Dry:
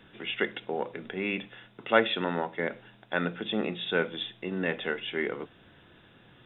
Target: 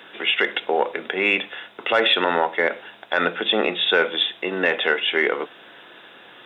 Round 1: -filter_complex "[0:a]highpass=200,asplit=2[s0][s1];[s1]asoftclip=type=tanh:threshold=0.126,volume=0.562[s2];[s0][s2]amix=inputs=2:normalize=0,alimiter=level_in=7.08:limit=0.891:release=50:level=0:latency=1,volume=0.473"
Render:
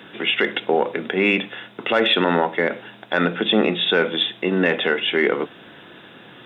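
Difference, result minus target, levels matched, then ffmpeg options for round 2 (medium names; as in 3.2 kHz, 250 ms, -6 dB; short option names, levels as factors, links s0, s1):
250 Hz band +7.0 dB
-filter_complex "[0:a]highpass=470,asplit=2[s0][s1];[s1]asoftclip=type=tanh:threshold=0.126,volume=0.562[s2];[s0][s2]amix=inputs=2:normalize=0,alimiter=level_in=7.08:limit=0.891:release=50:level=0:latency=1,volume=0.473"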